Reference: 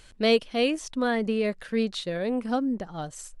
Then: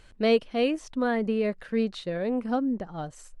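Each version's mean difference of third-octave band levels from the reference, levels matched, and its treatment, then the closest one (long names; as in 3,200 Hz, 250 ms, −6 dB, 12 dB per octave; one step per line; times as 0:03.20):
2.0 dB: high-shelf EQ 3,300 Hz −10.5 dB
notch filter 3,400 Hz, Q 27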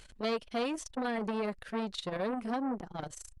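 4.5 dB: downward compressor 5 to 1, threshold −27 dBFS, peak gain reduction 10 dB
saturating transformer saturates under 860 Hz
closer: first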